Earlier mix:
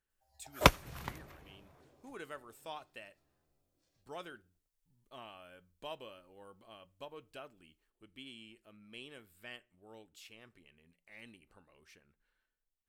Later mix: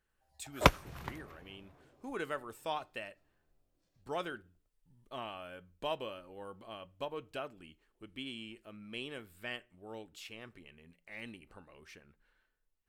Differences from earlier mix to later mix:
speech +8.5 dB
master: add high-shelf EQ 4,000 Hz −6 dB

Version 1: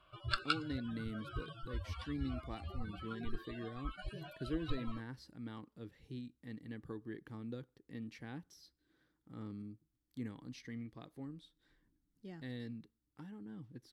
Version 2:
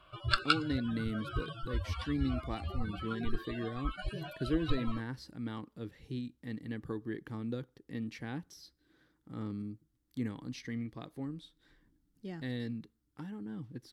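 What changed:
speech +7.0 dB
background +6.5 dB

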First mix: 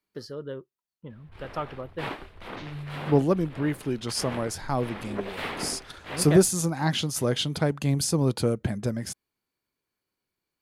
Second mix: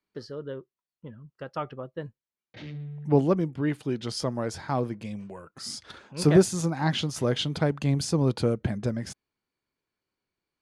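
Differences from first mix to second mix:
first sound: muted
master: add high-frequency loss of the air 65 metres

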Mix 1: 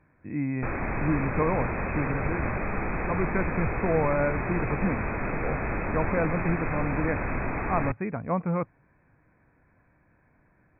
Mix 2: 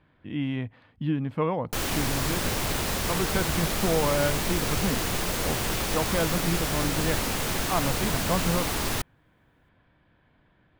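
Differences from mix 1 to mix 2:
background: entry +1.10 s
master: remove linear-phase brick-wall low-pass 2,600 Hz

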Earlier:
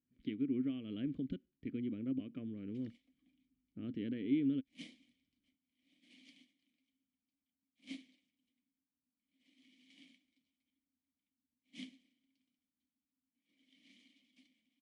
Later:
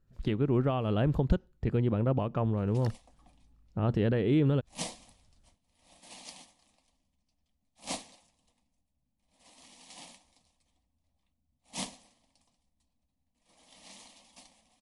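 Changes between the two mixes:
first sound: add spectral tilt +2.5 dB per octave
master: remove formant filter i

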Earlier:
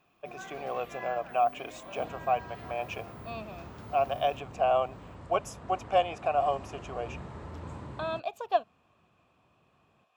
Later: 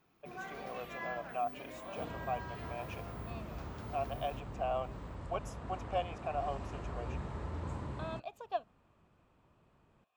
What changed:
speech −10.0 dB
second sound: remove high-pass filter 79 Hz

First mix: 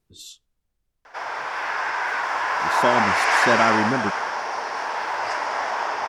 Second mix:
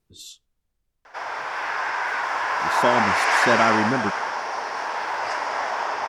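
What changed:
background −3.0 dB
reverb: on, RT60 1.3 s

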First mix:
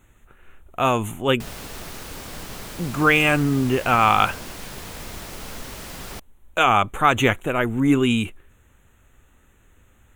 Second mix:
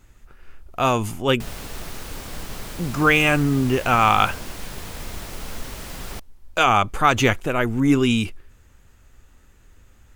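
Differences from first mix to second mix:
speech: remove Butterworth band-reject 5,000 Hz, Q 1.7
master: add low-shelf EQ 62 Hz +7.5 dB

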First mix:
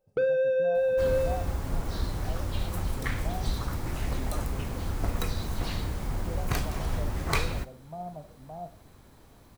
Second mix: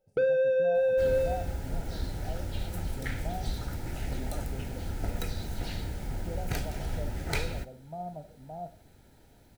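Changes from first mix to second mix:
speech: add high-shelf EQ 4,800 Hz +10.5 dB
second sound −3.5 dB
master: add Butterworth band-reject 1,100 Hz, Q 3.4

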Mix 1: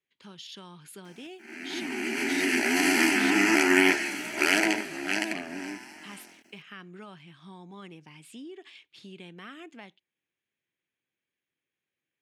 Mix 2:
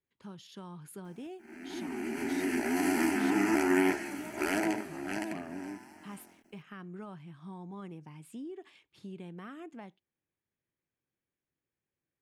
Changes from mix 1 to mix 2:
background −4.0 dB
master: remove meter weighting curve D

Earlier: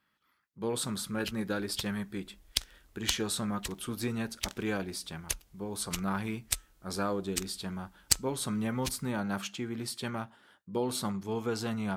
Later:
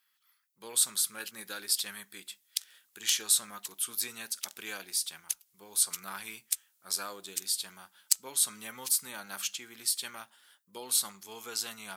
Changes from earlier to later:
speech +10.0 dB
master: add first difference

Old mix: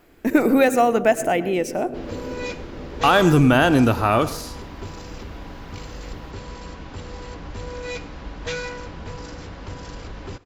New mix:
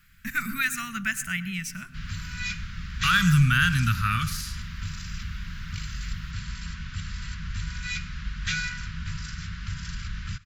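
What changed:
first sound −4.5 dB
second sound +3.5 dB
master: add elliptic band-stop filter 180–1,400 Hz, stop band 40 dB

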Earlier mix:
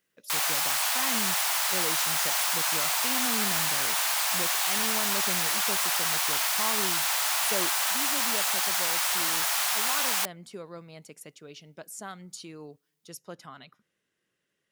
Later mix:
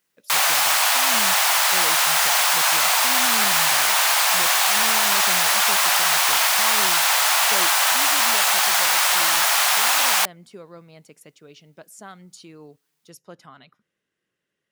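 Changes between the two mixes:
background +11.0 dB
master: add high-shelf EQ 4,400 Hz −4.5 dB

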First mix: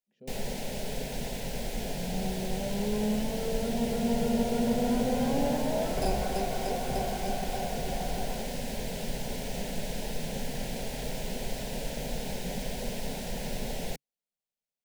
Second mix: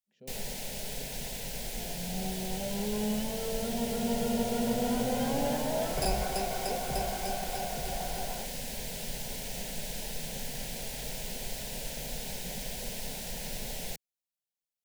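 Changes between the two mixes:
first sound −5.0 dB
master: add drawn EQ curve 140 Hz 0 dB, 270 Hz −4 dB, 14,000 Hz +10 dB

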